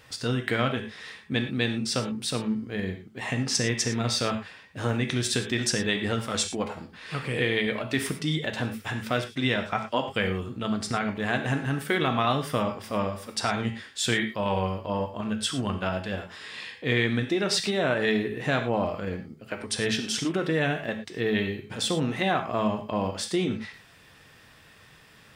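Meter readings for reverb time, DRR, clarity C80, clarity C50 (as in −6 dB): non-exponential decay, 4.5 dB, 11.5 dB, 8.5 dB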